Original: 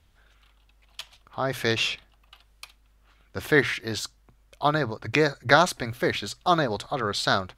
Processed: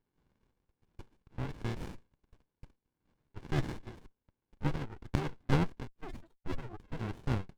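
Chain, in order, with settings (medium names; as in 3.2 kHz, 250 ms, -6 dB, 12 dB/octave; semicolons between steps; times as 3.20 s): 5.87–6.92 s: spectral contrast enhancement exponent 3; mistuned SSB -75 Hz 530–2900 Hz; sliding maximum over 65 samples; trim -6 dB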